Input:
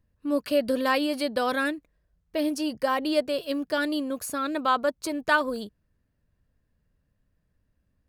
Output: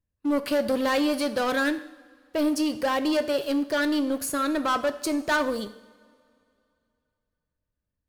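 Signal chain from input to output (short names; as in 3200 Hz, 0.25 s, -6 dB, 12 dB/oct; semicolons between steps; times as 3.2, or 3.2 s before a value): sample leveller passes 3; two-slope reverb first 0.7 s, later 2.7 s, from -19 dB, DRR 10 dB; gain -7.5 dB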